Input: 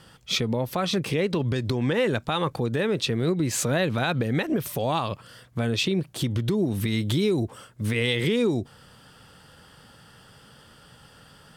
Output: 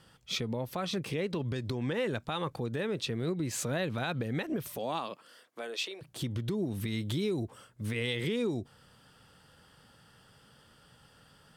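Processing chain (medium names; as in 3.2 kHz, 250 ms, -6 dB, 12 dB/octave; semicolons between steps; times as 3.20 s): 4.76–6.01 s: high-pass 150 Hz -> 520 Hz 24 dB/octave; trim -8.5 dB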